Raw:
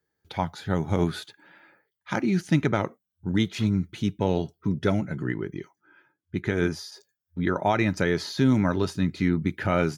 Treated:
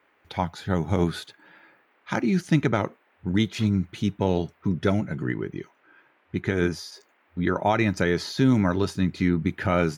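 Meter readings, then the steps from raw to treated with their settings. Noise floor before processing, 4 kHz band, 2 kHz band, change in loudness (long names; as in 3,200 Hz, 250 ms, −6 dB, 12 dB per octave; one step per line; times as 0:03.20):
−83 dBFS, +1.0 dB, +1.0 dB, +1.0 dB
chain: noise in a band 240–2,300 Hz −66 dBFS
level +1 dB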